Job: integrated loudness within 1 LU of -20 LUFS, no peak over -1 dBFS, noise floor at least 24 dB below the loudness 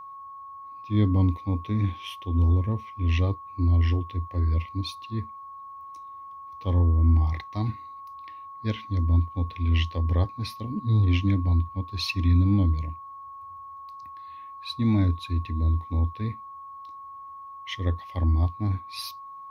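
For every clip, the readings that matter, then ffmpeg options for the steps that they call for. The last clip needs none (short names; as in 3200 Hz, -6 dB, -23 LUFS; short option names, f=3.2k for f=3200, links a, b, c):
steady tone 1100 Hz; tone level -39 dBFS; loudness -26.0 LUFS; peak -10.5 dBFS; loudness target -20.0 LUFS
-> -af "bandreject=f=1.1k:w=30"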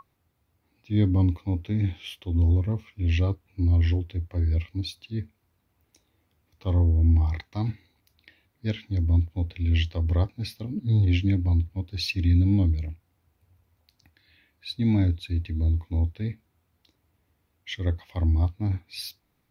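steady tone none; loudness -26.0 LUFS; peak -11.0 dBFS; loudness target -20.0 LUFS
-> -af "volume=6dB"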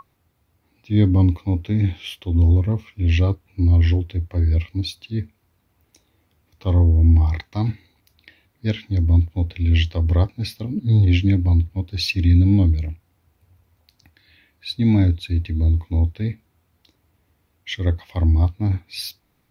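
loudness -20.0 LUFS; peak -5.0 dBFS; noise floor -66 dBFS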